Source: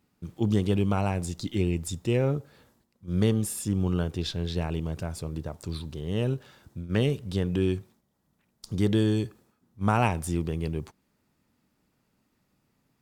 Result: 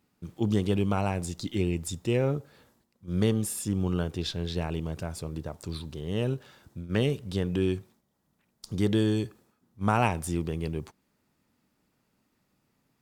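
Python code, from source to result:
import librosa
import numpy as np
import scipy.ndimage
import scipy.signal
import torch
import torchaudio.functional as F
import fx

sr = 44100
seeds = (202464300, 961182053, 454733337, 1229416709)

y = fx.low_shelf(x, sr, hz=160.0, db=-3.5)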